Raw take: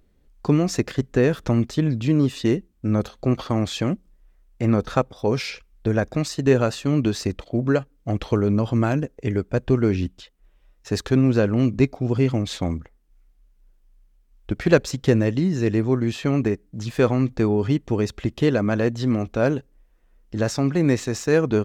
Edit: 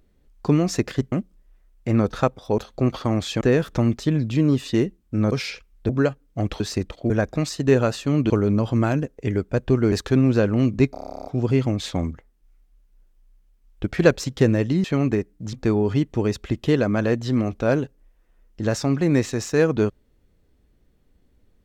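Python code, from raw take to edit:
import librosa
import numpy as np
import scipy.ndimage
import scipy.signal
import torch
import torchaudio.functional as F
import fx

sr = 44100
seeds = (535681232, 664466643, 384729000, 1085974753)

y = fx.edit(x, sr, fx.swap(start_s=1.12, length_s=1.91, other_s=3.86, other_length_s=1.46),
    fx.swap(start_s=5.89, length_s=1.2, other_s=7.59, other_length_s=0.71),
    fx.cut(start_s=9.92, length_s=1.0),
    fx.stutter(start_s=11.92, slice_s=0.03, count=12),
    fx.cut(start_s=15.51, length_s=0.66),
    fx.cut(start_s=16.86, length_s=0.41), tone=tone)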